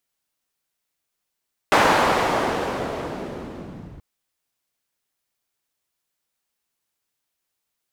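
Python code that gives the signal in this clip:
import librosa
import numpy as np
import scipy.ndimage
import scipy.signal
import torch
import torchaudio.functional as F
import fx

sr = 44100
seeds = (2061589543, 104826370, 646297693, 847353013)

y = fx.riser_noise(sr, seeds[0], length_s=2.28, colour='pink', kind='bandpass', start_hz=960.0, end_hz=100.0, q=0.93, swell_db=-25.0, law='linear')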